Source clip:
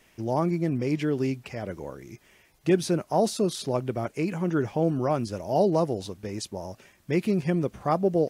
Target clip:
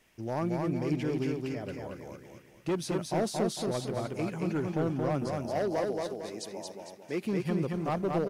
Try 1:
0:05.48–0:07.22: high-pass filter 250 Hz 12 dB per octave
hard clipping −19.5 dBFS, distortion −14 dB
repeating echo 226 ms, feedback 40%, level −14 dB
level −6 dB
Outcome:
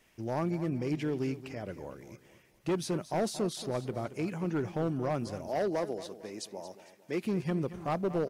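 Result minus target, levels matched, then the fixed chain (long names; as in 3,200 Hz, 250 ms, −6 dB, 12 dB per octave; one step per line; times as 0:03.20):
echo-to-direct −11 dB
0:05.48–0:07.22: high-pass filter 250 Hz 12 dB per octave
hard clipping −19.5 dBFS, distortion −14 dB
repeating echo 226 ms, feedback 40%, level −3 dB
level −6 dB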